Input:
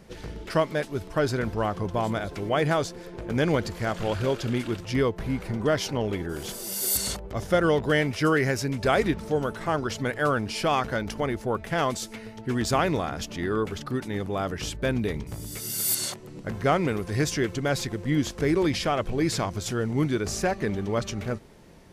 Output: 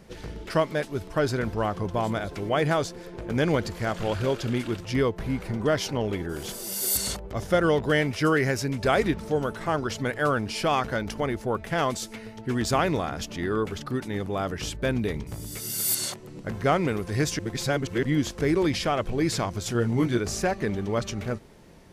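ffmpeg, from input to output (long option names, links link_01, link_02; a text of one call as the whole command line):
ffmpeg -i in.wav -filter_complex "[0:a]asettb=1/sr,asplit=3[link_01][link_02][link_03];[link_01]atrim=end=19.734[link_04];[link_02]atrim=start=19.73:end=20.2,asetpts=PTS-STARTPTS,afade=type=in:duration=0.004:curve=qsin,afade=type=out:start_time=0.466:duration=0.004:curve=qsin,asplit=2[link_05][link_06];[link_06]adelay=17,volume=-4.5dB[link_07];[link_05][link_07]amix=inputs=2:normalize=0,atrim=end_sample=20727[link_08];[link_03]atrim=start=20.196[link_09];[link_04][link_08]acrossfade=duration=0.004:curve1=hsin:curve2=qsin[link_10];[link_10][link_09]acrossfade=duration=0.004:curve1=qsin:curve2=hsin,asplit=3[link_11][link_12][link_13];[link_11]atrim=end=17.392[link_14];[link_12]atrim=start=17.388:end=18.032,asetpts=PTS-STARTPTS,areverse[link_15];[link_13]atrim=start=18.028[link_16];[link_14][link_15]acrossfade=duration=0.004:curve1=hsin:curve2=hsin[link_17];[link_17][link_16]acrossfade=duration=0.004:curve1=hsin:curve2=hsin" out.wav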